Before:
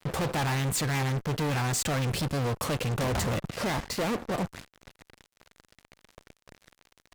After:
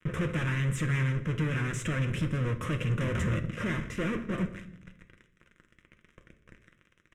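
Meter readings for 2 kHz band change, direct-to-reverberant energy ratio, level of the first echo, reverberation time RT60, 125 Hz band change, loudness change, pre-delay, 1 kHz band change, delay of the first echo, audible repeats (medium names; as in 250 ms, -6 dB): -0.5 dB, 6.0 dB, -23.0 dB, 0.70 s, +1.0 dB, -1.5 dB, 6 ms, -8.5 dB, 162 ms, 1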